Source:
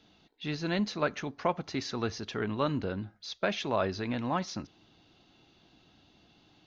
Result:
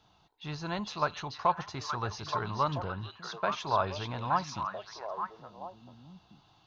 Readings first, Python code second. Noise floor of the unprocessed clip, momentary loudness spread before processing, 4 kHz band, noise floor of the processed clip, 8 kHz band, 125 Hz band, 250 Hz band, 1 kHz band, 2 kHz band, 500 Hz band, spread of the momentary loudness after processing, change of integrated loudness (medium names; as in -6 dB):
-64 dBFS, 9 LU, -1.5 dB, -65 dBFS, no reading, -0.5 dB, -7.5 dB, +6.0 dB, -2.0 dB, -3.0 dB, 16 LU, -0.5 dB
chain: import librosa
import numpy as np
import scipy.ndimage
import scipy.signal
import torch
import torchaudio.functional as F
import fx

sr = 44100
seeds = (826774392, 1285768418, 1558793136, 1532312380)

y = fx.graphic_eq_10(x, sr, hz=(125, 250, 500, 1000, 2000, 4000), db=(4, -12, -5, 10, -8, -3))
y = fx.echo_stepped(y, sr, ms=436, hz=3700.0, octaves=-1.4, feedback_pct=70, wet_db=-1)